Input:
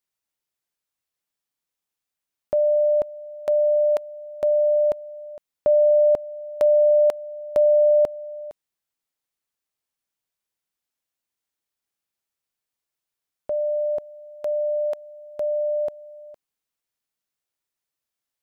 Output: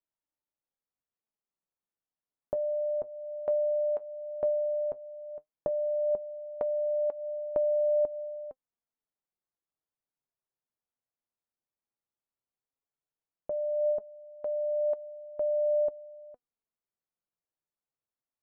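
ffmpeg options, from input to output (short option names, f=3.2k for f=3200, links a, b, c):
-af "lowpass=1.1k,acompressor=threshold=-23dB:ratio=6,flanger=delay=3.2:depth=5.4:regen=64:speed=0.13:shape=sinusoidal"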